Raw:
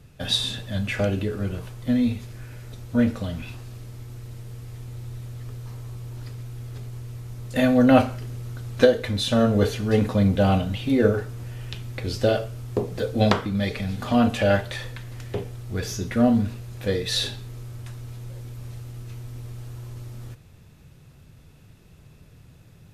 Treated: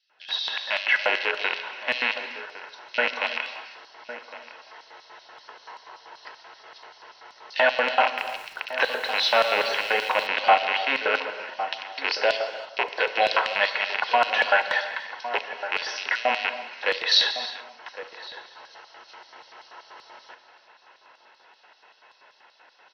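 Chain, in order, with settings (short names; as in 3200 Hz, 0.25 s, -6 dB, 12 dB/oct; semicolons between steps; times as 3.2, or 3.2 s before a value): rattling part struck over -29 dBFS, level -18 dBFS; brick-wall FIR low-pass 6200 Hz; three-band isolator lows -23 dB, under 260 Hz, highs -15 dB, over 3600 Hz; limiter -15 dBFS, peak gain reduction 10 dB; LFO high-pass square 5.2 Hz 970–4500 Hz; notch comb 1200 Hz; outdoor echo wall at 190 m, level -11 dB; non-linear reverb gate 0.36 s flat, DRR 9.5 dB; AGC gain up to 12 dB; 8.06–10.27 lo-fi delay 0.116 s, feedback 55%, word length 6-bit, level -11.5 dB; gain -2 dB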